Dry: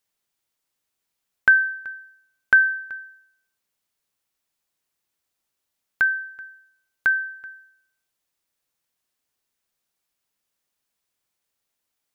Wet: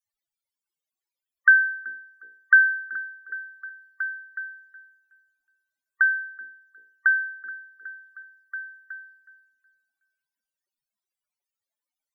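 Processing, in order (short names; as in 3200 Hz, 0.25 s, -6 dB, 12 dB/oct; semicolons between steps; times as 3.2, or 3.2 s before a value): notches 60/120/180/240/300/360/420/480 Hz; loudest bins only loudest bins 32; delay with a stepping band-pass 0.369 s, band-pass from 290 Hz, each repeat 0.7 oct, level -4.5 dB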